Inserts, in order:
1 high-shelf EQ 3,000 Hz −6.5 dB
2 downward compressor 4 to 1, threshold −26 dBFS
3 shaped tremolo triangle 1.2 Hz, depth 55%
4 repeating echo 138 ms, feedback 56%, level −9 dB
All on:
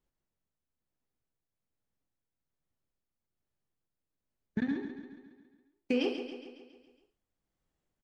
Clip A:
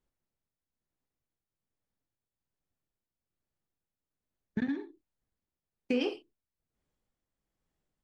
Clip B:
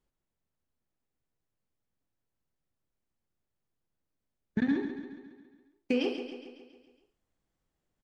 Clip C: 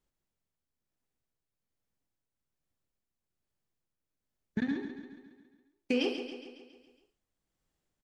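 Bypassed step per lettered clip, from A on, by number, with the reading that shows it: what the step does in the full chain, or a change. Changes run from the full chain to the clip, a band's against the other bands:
4, echo-to-direct ratio −7.5 dB to none audible
3, change in momentary loudness spread −3 LU
1, 4 kHz band +3.0 dB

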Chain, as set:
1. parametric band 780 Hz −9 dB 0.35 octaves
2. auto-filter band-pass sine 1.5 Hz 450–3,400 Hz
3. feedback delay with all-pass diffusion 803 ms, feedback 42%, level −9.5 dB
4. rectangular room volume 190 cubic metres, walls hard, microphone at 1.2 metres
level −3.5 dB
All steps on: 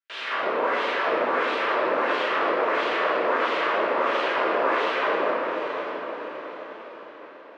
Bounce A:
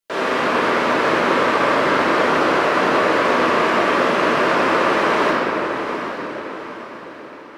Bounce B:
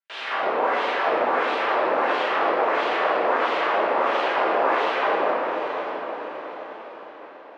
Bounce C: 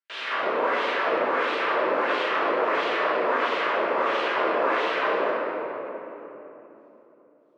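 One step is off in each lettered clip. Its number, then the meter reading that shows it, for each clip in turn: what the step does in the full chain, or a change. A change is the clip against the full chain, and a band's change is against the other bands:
2, 250 Hz band +5.5 dB
1, 1 kHz band +2.5 dB
3, change in momentary loudness spread −4 LU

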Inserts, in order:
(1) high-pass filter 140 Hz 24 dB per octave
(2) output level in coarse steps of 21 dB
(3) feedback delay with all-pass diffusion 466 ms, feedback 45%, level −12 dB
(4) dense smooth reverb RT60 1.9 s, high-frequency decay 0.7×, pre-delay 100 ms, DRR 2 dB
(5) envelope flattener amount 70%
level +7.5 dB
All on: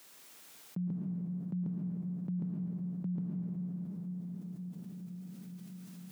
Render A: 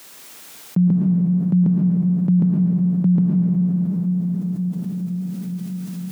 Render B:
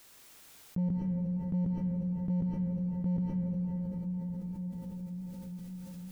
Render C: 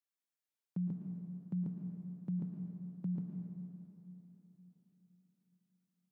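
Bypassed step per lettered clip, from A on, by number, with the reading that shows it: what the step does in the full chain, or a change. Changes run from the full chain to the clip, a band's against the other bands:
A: 2, change in integrated loudness +20.0 LU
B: 1, change in integrated loudness +5.0 LU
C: 5, change in crest factor +3.5 dB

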